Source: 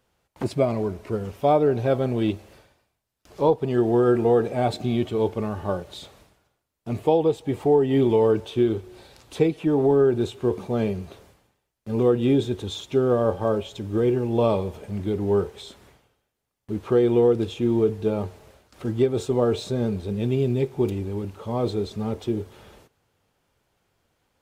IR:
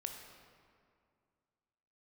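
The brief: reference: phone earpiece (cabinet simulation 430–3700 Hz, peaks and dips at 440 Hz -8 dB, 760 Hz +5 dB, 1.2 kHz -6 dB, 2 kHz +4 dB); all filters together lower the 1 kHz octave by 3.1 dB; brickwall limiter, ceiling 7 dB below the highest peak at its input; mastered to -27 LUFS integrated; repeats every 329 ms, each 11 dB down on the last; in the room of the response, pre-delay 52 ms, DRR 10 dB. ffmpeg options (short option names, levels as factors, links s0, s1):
-filter_complex "[0:a]equalizer=f=1000:t=o:g=-8,alimiter=limit=0.15:level=0:latency=1,aecho=1:1:329|658|987:0.282|0.0789|0.0221,asplit=2[s0][s1];[1:a]atrim=start_sample=2205,adelay=52[s2];[s1][s2]afir=irnorm=-1:irlink=0,volume=0.376[s3];[s0][s3]amix=inputs=2:normalize=0,highpass=430,equalizer=f=440:t=q:w=4:g=-8,equalizer=f=760:t=q:w=4:g=5,equalizer=f=1200:t=q:w=4:g=-6,equalizer=f=2000:t=q:w=4:g=4,lowpass=f=3700:w=0.5412,lowpass=f=3700:w=1.3066,volume=2.24"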